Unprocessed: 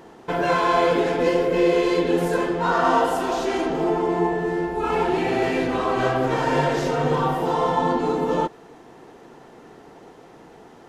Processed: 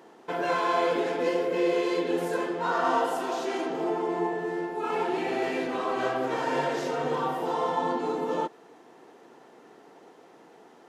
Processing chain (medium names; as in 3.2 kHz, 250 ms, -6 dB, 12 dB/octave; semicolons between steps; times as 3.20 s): high-pass 240 Hz 12 dB/octave; trim -6 dB